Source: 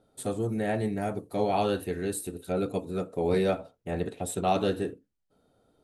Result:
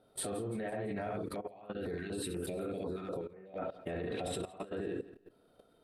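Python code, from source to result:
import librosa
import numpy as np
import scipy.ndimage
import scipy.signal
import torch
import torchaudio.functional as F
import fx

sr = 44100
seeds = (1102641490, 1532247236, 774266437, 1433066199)

y = fx.spec_quant(x, sr, step_db=15)
y = fx.low_shelf(y, sr, hz=340.0, db=-9.0)
y = fx.notch(y, sr, hz=840.0, q=12.0)
y = fx.room_early_taps(y, sr, ms=(35, 69), db=(-11.5, -4.5))
y = fx.env_lowpass_down(y, sr, base_hz=2100.0, full_db=-27.0)
y = fx.peak_eq(y, sr, hz=6700.0, db=-12.0, octaves=0.48)
y = fx.over_compress(y, sr, threshold_db=-41.0, ratio=-1.0)
y = fx.echo_feedback(y, sr, ms=168, feedback_pct=46, wet_db=-18.0)
y = fx.level_steps(y, sr, step_db=15)
y = fx.filter_held_notch(y, sr, hz=8.1, low_hz=520.0, high_hz=5400.0, at=(1.17, 3.73), fade=0.02)
y = y * 10.0 ** (7.5 / 20.0)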